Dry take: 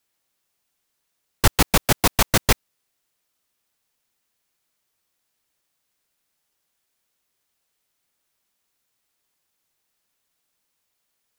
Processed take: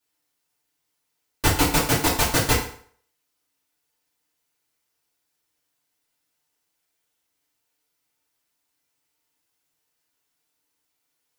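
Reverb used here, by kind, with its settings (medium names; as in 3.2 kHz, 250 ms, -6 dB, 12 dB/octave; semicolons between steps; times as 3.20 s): FDN reverb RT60 0.54 s, low-frequency decay 0.85×, high-frequency decay 0.85×, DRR -7 dB; trim -8.5 dB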